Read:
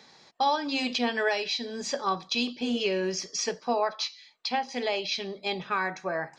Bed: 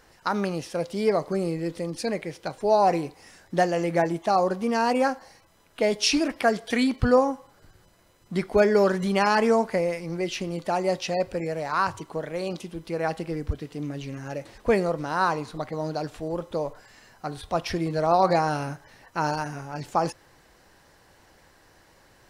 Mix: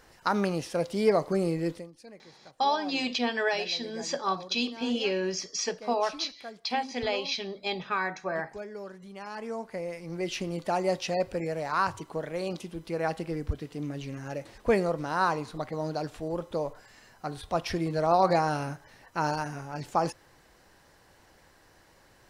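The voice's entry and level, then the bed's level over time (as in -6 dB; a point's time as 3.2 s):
2.20 s, -1.0 dB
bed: 1.72 s -0.5 dB
1.92 s -21 dB
9.15 s -21 dB
10.32 s -2.5 dB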